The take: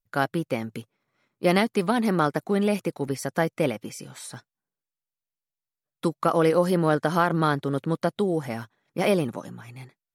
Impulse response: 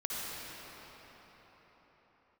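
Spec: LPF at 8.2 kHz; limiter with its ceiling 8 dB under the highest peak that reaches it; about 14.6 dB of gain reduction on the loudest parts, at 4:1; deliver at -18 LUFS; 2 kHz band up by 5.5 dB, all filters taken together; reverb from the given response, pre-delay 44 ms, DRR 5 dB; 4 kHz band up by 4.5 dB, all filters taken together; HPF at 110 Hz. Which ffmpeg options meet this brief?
-filter_complex "[0:a]highpass=110,lowpass=8200,equalizer=f=2000:t=o:g=6.5,equalizer=f=4000:t=o:g=3.5,acompressor=threshold=0.0224:ratio=4,alimiter=level_in=1.12:limit=0.0631:level=0:latency=1,volume=0.891,asplit=2[s0][s1];[1:a]atrim=start_sample=2205,adelay=44[s2];[s1][s2]afir=irnorm=-1:irlink=0,volume=0.316[s3];[s0][s3]amix=inputs=2:normalize=0,volume=9.44"

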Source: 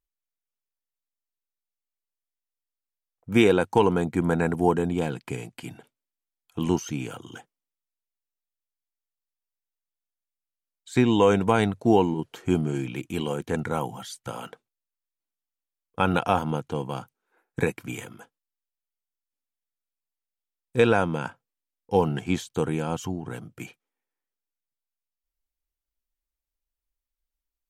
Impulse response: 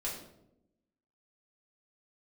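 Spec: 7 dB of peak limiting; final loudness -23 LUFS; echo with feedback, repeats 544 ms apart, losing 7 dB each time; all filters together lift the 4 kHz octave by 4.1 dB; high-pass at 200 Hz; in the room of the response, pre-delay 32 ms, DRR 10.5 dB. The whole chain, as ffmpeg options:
-filter_complex "[0:a]highpass=200,equalizer=f=4000:t=o:g=5.5,alimiter=limit=0.251:level=0:latency=1,aecho=1:1:544|1088|1632|2176|2720:0.447|0.201|0.0905|0.0407|0.0183,asplit=2[s0][s1];[1:a]atrim=start_sample=2205,adelay=32[s2];[s1][s2]afir=irnorm=-1:irlink=0,volume=0.237[s3];[s0][s3]amix=inputs=2:normalize=0,volume=1.68"

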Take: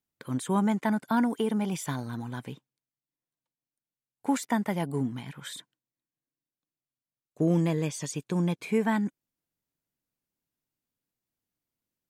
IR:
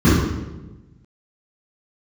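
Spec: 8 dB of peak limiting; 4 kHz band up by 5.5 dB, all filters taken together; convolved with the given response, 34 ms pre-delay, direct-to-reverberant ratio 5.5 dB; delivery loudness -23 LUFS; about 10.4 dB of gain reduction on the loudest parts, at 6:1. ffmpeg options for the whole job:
-filter_complex "[0:a]equalizer=f=4000:t=o:g=7,acompressor=threshold=0.0251:ratio=6,alimiter=level_in=1.58:limit=0.0631:level=0:latency=1,volume=0.631,asplit=2[s0][s1];[1:a]atrim=start_sample=2205,adelay=34[s2];[s1][s2]afir=irnorm=-1:irlink=0,volume=0.0355[s3];[s0][s3]amix=inputs=2:normalize=0,volume=1.78"

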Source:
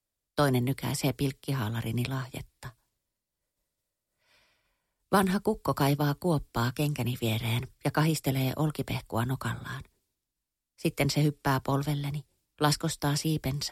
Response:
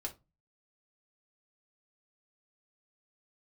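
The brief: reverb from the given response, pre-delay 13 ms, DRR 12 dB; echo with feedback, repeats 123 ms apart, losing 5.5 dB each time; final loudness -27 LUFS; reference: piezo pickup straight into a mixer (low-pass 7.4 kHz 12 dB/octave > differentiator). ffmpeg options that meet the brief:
-filter_complex "[0:a]aecho=1:1:123|246|369|492|615|738|861:0.531|0.281|0.149|0.079|0.0419|0.0222|0.0118,asplit=2[s0][s1];[1:a]atrim=start_sample=2205,adelay=13[s2];[s1][s2]afir=irnorm=-1:irlink=0,volume=0.282[s3];[s0][s3]amix=inputs=2:normalize=0,lowpass=7400,aderivative,volume=5.62"

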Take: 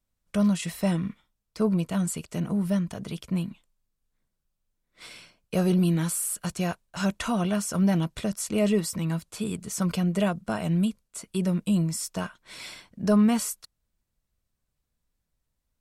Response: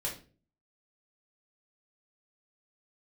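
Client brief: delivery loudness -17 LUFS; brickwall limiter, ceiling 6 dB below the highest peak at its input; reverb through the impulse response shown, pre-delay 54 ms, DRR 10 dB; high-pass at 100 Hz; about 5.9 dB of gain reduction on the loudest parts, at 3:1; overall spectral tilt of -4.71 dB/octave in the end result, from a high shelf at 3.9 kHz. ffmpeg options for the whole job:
-filter_complex "[0:a]highpass=100,highshelf=f=3900:g=7,acompressor=threshold=0.0501:ratio=3,alimiter=limit=0.0794:level=0:latency=1,asplit=2[s0][s1];[1:a]atrim=start_sample=2205,adelay=54[s2];[s1][s2]afir=irnorm=-1:irlink=0,volume=0.224[s3];[s0][s3]amix=inputs=2:normalize=0,volume=5.01"

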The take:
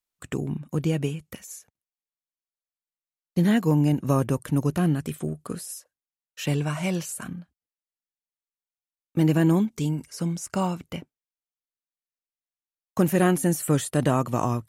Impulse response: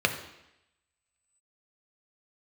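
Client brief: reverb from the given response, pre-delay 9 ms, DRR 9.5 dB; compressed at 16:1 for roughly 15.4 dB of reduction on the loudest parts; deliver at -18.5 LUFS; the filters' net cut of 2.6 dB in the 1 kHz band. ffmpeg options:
-filter_complex "[0:a]equalizer=f=1000:t=o:g=-3.5,acompressor=threshold=0.0251:ratio=16,asplit=2[s0][s1];[1:a]atrim=start_sample=2205,adelay=9[s2];[s1][s2]afir=irnorm=-1:irlink=0,volume=0.075[s3];[s0][s3]amix=inputs=2:normalize=0,volume=8.41"

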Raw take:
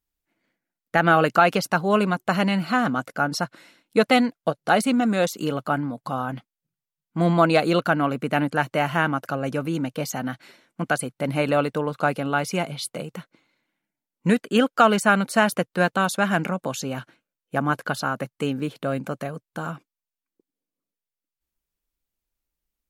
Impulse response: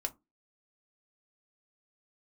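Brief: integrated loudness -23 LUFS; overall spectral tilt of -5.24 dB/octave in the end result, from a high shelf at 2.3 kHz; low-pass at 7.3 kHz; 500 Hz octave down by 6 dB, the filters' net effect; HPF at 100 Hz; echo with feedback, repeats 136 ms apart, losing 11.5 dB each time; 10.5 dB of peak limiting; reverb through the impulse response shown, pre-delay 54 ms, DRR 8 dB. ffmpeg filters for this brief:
-filter_complex "[0:a]highpass=100,lowpass=7300,equalizer=f=500:t=o:g=-7.5,highshelf=f=2300:g=-6,alimiter=limit=0.133:level=0:latency=1,aecho=1:1:136|272|408:0.266|0.0718|0.0194,asplit=2[s0][s1];[1:a]atrim=start_sample=2205,adelay=54[s2];[s1][s2]afir=irnorm=-1:irlink=0,volume=0.355[s3];[s0][s3]amix=inputs=2:normalize=0,volume=2.11"

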